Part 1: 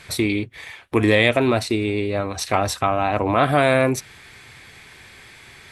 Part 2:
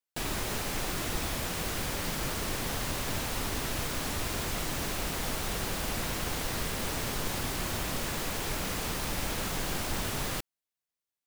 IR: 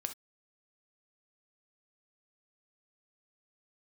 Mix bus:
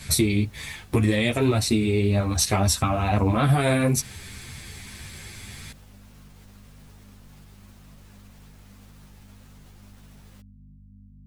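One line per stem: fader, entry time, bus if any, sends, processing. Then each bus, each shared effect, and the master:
+1.0 dB, 0.00 s, no send, tone controls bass +13 dB, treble +12 dB; compression 6:1, threshold -15 dBFS, peak gain reduction 9.5 dB
-16.0 dB, 0.00 s, no send, peak limiter -27 dBFS, peak gain reduction 8 dB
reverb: none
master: hum 50 Hz, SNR 20 dB; three-phase chorus

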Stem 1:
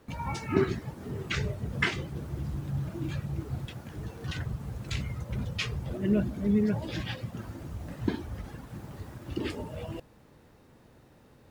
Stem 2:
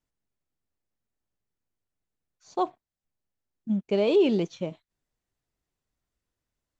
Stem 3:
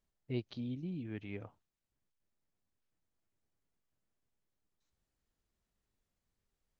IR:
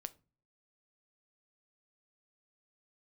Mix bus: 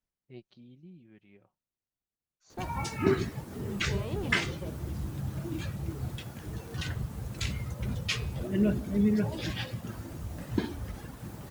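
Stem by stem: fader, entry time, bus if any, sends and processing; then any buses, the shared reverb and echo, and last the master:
0.0 dB, 2.50 s, no bus, no send, treble shelf 5.4 kHz +7.5 dB; de-hum 139.9 Hz, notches 37
-3.0 dB, 0.00 s, bus A, no send, none
-8.0 dB, 0.00 s, bus A, no send, comb 5.4 ms, depth 46%; auto duck -9 dB, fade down 1.65 s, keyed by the second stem
bus A: 0.0 dB, valve stage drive 22 dB, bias 0.75; peak limiter -32 dBFS, peak gain reduction 11 dB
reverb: none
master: none

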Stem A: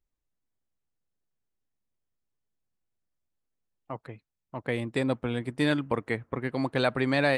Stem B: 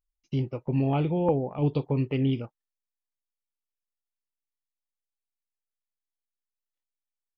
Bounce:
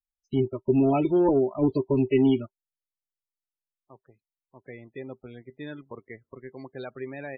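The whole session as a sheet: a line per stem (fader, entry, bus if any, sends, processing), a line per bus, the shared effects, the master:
-17.0 dB, 0.00 s, no send, none
+1.5 dB, 0.00 s, no send, expander on every frequency bin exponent 1.5; comb 3.1 ms, depth 70%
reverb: none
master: waveshaping leveller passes 1; loudest bins only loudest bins 32; small resonant body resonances 390/2000 Hz, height 10 dB, ringing for 100 ms

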